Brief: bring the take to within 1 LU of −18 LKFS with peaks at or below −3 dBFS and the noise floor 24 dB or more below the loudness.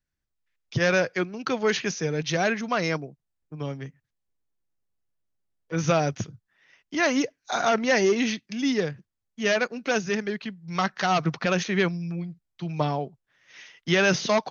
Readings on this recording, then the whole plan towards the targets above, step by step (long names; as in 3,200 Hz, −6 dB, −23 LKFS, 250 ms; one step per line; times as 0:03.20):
integrated loudness −25.5 LKFS; sample peak −9.0 dBFS; target loudness −18.0 LKFS
→ level +7.5 dB
brickwall limiter −3 dBFS